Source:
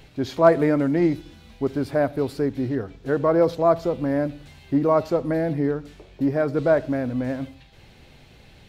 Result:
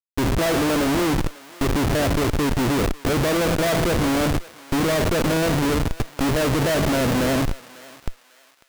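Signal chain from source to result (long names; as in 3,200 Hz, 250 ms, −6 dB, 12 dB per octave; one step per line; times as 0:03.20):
compressor on every frequency bin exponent 0.6
comparator with hysteresis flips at −24 dBFS
feedback echo with a high-pass in the loop 547 ms, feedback 38%, high-pass 960 Hz, level −16.5 dB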